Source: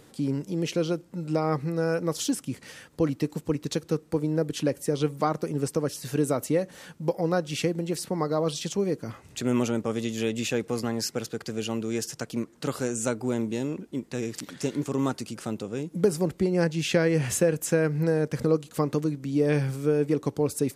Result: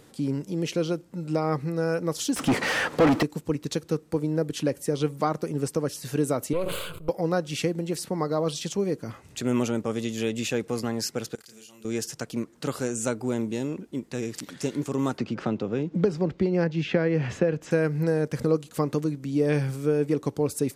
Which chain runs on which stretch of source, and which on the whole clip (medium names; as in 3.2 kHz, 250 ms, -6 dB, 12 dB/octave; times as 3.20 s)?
2.36–3.23 s: overdrive pedal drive 36 dB, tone 1.5 kHz, clips at -12.5 dBFS + dynamic bell 840 Hz, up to +4 dB, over -33 dBFS, Q 0.87
6.53–7.09 s: partial rectifier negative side -12 dB + static phaser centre 1.2 kHz, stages 8 + decay stretcher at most 37 dB/s
11.35–11.85 s: pre-emphasis filter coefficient 0.9 + compression 5:1, threshold -47 dBFS + doubling 32 ms -2.5 dB
15.18–17.71 s: distance through air 200 m + three bands compressed up and down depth 70%
whole clip: none